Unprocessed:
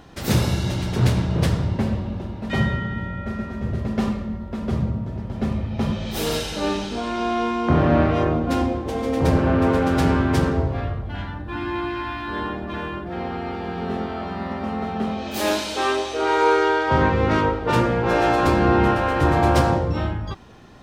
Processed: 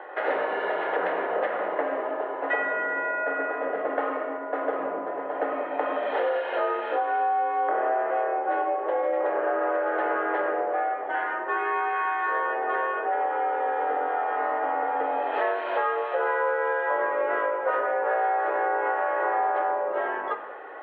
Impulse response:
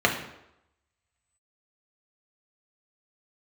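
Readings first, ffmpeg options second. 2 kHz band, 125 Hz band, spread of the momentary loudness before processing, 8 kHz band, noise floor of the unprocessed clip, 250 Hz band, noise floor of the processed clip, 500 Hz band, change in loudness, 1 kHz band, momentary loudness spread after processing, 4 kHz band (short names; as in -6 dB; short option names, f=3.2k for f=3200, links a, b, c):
0.0 dB, under -40 dB, 11 LU, under -40 dB, -32 dBFS, -17.5 dB, -33 dBFS, -2.0 dB, -4.0 dB, 0.0 dB, 4 LU, under -15 dB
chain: -filter_complex "[0:a]asplit=2[a][b];[1:a]atrim=start_sample=2205[c];[b][c]afir=irnorm=-1:irlink=0,volume=-17.5dB[d];[a][d]amix=inputs=2:normalize=0,highpass=f=410:t=q:w=0.5412,highpass=f=410:t=q:w=1.307,lowpass=f=2.3k:t=q:w=0.5176,lowpass=f=2.3k:t=q:w=0.7071,lowpass=f=2.3k:t=q:w=1.932,afreqshift=58,acompressor=threshold=-30dB:ratio=8,volume=7dB"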